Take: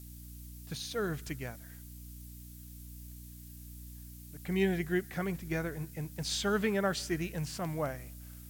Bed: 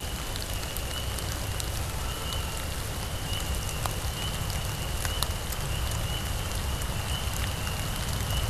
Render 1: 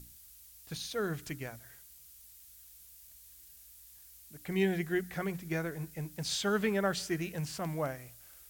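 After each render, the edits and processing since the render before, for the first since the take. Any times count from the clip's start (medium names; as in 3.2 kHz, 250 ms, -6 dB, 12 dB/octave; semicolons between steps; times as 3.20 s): hum notches 60/120/180/240/300 Hz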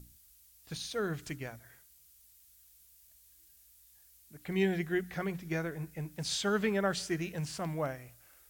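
noise print and reduce 6 dB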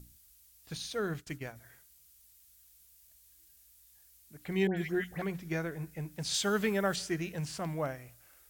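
1.14–1.56 s: expander -43 dBFS; 4.67–5.22 s: phase dispersion highs, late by 99 ms, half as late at 1.9 kHz; 6.34–6.96 s: treble shelf 6.1 kHz +9 dB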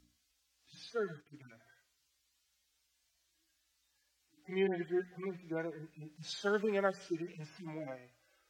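harmonic-percussive separation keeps harmonic; three-band isolator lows -17 dB, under 240 Hz, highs -22 dB, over 6.1 kHz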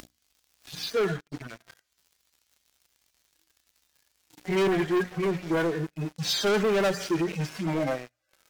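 upward compressor, threshold -54 dBFS; waveshaping leveller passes 5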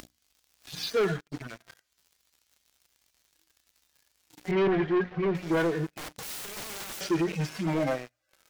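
4.51–5.35 s: distance through air 270 m; 5.88–7.01 s: integer overflow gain 33 dB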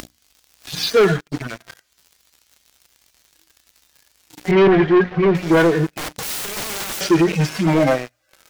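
trim +12 dB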